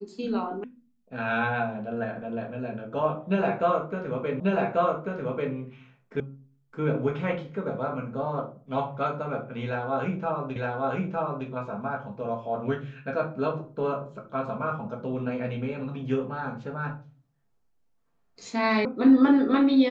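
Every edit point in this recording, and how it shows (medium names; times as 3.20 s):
0.64 s: sound stops dead
4.40 s: repeat of the last 1.14 s
6.20 s: sound stops dead
10.56 s: repeat of the last 0.91 s
18.85 s: sound stops dead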